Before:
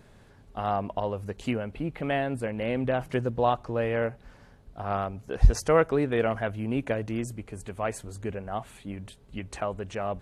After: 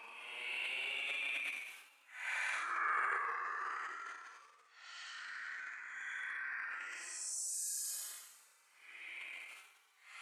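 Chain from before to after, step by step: pitch shift switched off and on -6 st, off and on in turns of 328 ms; high-pass 1.1 kHz 24 dB/octave; Paulstretch 13×, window 0.05 s, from 6.69 s; transient shaper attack -1 dB, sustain +12 dB; trim +2 dB

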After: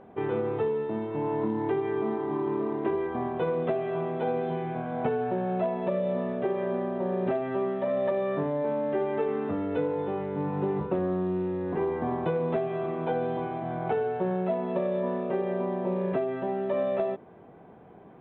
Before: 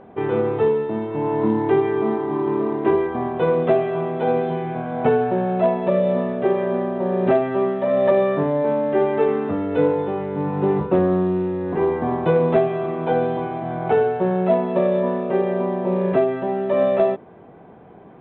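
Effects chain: compression, threshold -18 dBFS, peak gain reduction 6.5 dB; trim -6 dB

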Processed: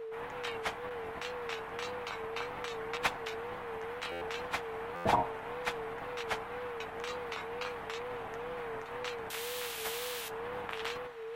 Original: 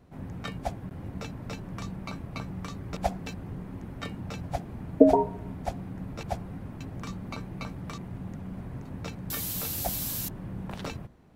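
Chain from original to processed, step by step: spectral peaks clipped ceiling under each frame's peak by 23 dB; high-order bell 1.6 kHz +10.5 dB 2.7 oct; reverse; upward compressor, threshold -32 dBFS; reverse; whistle 470 Hz -29 dBFS; flange 0.35 Hz, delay 6 ms, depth 6.9 ms, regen -41%; wow and flutter 88 cents; buffer glitch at 4.11/4.95 s, samples 512, times 8; trim -7.5 dB

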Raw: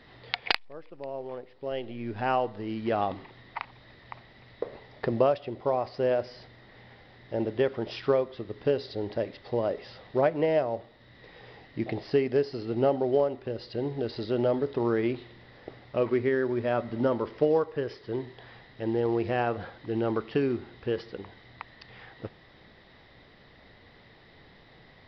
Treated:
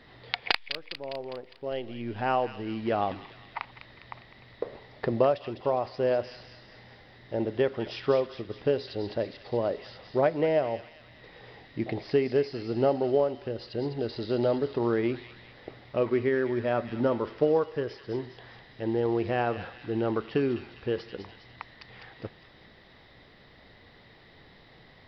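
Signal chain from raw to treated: feedback echo behind a high-pass 203 ms, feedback 53%, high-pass 2.4 kHz, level -5.5 dB

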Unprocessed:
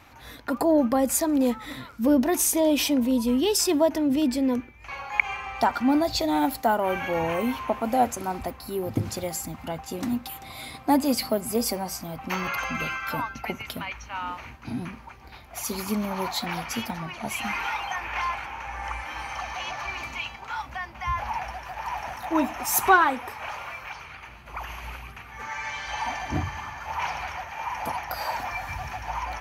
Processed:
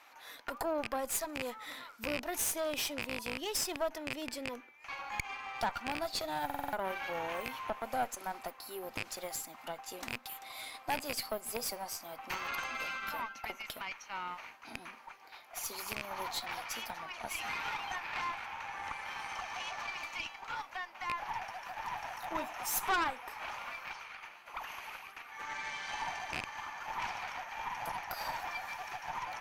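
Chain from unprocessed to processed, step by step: rattle on loud lows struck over -26 dBFS, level -13 dBFS; high-pass 610 Hz 12 dB/octave; in parallel at +3 dB: compression, threshold -35 dBFS, peak gain reduction 20.5 dB; on the sum: valve stage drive 18 dB, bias 0.8; buffer glitch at 6.45 s, samples 2048, times 5; trim -7.5 dB

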